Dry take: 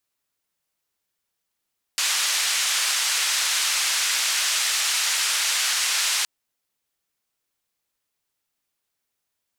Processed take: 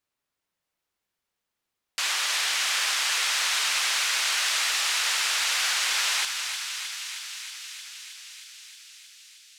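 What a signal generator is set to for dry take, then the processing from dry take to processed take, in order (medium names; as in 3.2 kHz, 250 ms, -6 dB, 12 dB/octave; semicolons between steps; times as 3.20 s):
noise band 1.4–7.5 kHz, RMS -23 dBFS 4.27 s
treble shelf 5 kHz -9.5 dB; on a send: thinning echo 313 ms, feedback 80%, high-pass 870 Hz, level -8 dB; on the sum: modulated delay 421 ms, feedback 53%, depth 181 cents, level -18 dB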